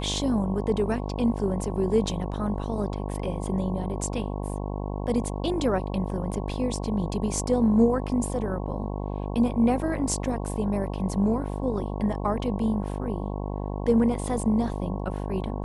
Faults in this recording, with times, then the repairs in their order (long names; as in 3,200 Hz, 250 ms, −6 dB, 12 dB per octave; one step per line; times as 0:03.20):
mains buzz 50 Hz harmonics 22 −31 dBFS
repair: hum removal 50 Hz, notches 22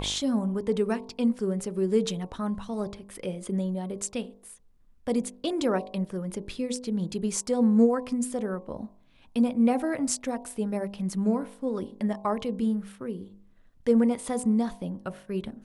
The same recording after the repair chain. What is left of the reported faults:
none of them is left